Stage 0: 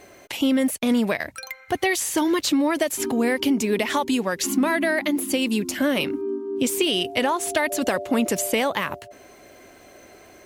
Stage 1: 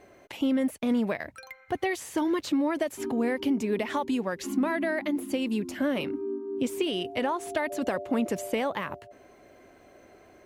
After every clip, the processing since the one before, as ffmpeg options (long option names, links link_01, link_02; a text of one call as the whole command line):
ffmpeg -i in.wav -af "highshelf=frequency=2800:gain=-11.5,volume=-5dB" out.wav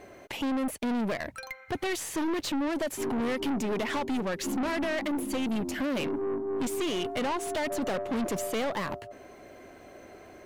ffmpeg -i in.wav -af "aeval=exprs='(tanh(44.7*val(0)+0.3)-tanh(0.3))/44.7':channel_layout=same,volume=6dB" out.wav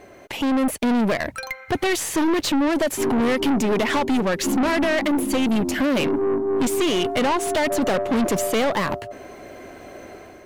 ffmpeg -i in.wav -af "dynaudnorm=framelen=110:gausssize=7:maxgain=6dB,volume=3.5dB" out.wav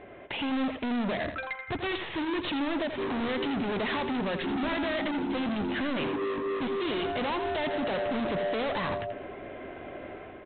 ffmpeg -i in.wav -af "aresample=8000,asoftclip=type=hard:threshold=-27.5dB,aresample=44100,aecho=1:1:83|166|249:0.355|0.0816|0.0188,volume=-2dB" out.wav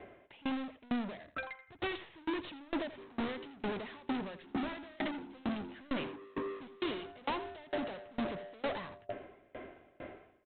ffmpeg -i in.wav -af "aeval=exprs='val(0)*pow(10,-28*if(lt(mod(2.2*n/s,1),2*abs(2.2)/1000),1-mod(2.2*n/s,1)/(2*abs(2.2)/1000),(mod(2.2*n/s,1)-2*abs(2.2)/1000)/(1-2*abs(2.2)/1000))/20)':channel_layout=same,volume=-1.5dB" out.wav